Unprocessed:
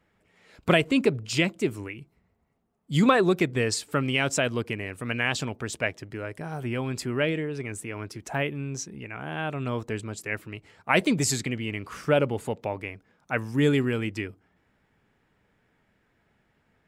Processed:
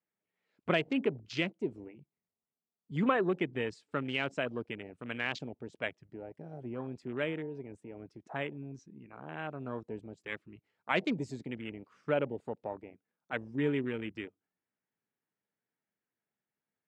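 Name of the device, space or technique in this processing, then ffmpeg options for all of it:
over-cleaned archive recording: -af "highpass=160,lowpass=5.4k,afwtdn=0.0224,volume=-8dB"

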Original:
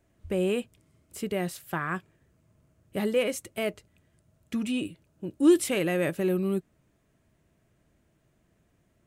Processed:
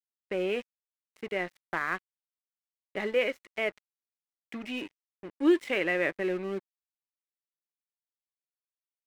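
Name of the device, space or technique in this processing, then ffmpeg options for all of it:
pocket radio on a weak battery: -af "highpass=340,lowpass=3.3k,aeval=exprs='sgn(val(0))*max(abs(val(0))-0.00531,0)':c=same,equalizer=f=2k:t=o:w=0.47:g=8.5"

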